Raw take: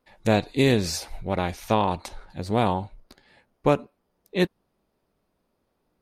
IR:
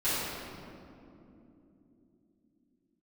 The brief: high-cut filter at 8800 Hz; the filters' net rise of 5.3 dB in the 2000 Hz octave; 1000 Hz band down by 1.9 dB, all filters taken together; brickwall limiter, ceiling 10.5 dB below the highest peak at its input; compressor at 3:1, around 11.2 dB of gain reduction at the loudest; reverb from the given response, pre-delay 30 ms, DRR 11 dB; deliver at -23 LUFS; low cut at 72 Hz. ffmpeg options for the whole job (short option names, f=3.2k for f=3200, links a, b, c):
-filter_complex "[0:a]highpass=72,lowpass=8.8k,equalizer=f=1k:t=o:g=-4,equalizer=f=2k:t=o:g=7.5,acompressor=threshold=-30dB:ratio=3,alimiter=level_in=1dB:limit=-24dB:level=0:latency=1,volume=-1dB,asplit=2[a][b];[1:a]atrim=start_sample=2205,adelay=30[c];[b][c]afir=irnorm=-1:irlink=0,volume=-22dB[d];[a][d]amix=inputs=2:normalize=0,volume=15.5dB"